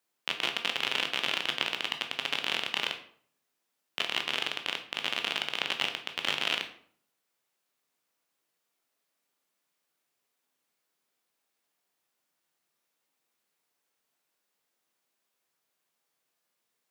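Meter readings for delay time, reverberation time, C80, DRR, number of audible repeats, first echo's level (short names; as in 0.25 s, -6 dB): none, 0.55 s, 14.5 dB, 5.0 dB, none, none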